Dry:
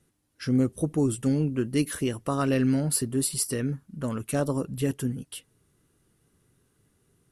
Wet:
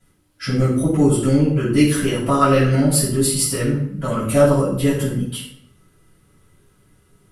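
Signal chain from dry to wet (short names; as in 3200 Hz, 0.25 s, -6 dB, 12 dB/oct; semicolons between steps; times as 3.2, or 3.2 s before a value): small resonant body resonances 570/1300/2000/3200 Hz, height 7 dB; reverb RT60 0.65 s, pre-delay 4 ms, DRR -10.5 dB; gain -2.5 dB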